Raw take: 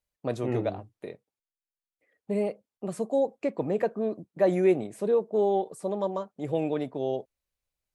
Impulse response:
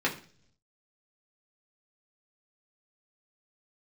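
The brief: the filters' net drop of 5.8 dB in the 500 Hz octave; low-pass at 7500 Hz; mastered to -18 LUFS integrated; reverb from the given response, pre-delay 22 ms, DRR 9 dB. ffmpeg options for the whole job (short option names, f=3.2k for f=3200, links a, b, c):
-filter_complex "[0:a]lowpass=7.5k,equalizer=f=500:t=o:g=-7.5,asplit=2[a][b];[1:a]atrim=start_sample=2205,adelay=22[c];[b][c]afir=irnorm=-1:irlink=0,volume=-19.5dB[d];[a][d]amix=inputs=2:normalize=0,volume=15dB"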